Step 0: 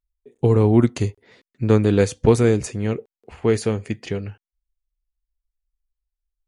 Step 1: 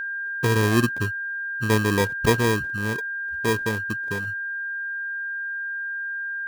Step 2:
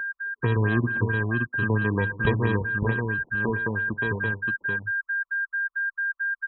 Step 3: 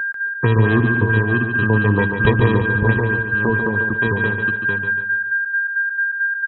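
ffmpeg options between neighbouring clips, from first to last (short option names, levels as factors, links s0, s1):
-af "afwtdn=0.0501,acrusher=samples=31:mix=1:aa=0.000001,aeval=exprs='val(0)+0.0794*sin(2*PI*1600*n/s)':c=same,volume=0.562"
-filter_complex "[0:a]acrossover=split=190[s0][s1];[s1]acompressor=threshold=0.0631:ratio=6[s2];[s0][s2]amix=inputs=2:normalize=0,asplit=2[s3][s4];[s4]aecho=0:1:118|216|575:0.141|0.119|0.631[s5];[s3][s5]amix=inputs=2:normalize=0,afftfilt=real='re*lt(b*sr/1024,990*pow(4100/990,0.5+0.5*sin(2*PI*4.5*pts/sr)))':imag='im*lt(b*sr/1024,990*pow(4100/990,0.5+0.5*sin(2*PI*4.5*pts/sr)))':win_size=1024:overlap=0.75"
-af "aecho=1:1:143|286|429|572|715:0.473|0.194|0.0795|0.0326|0.0134,volume=2.37"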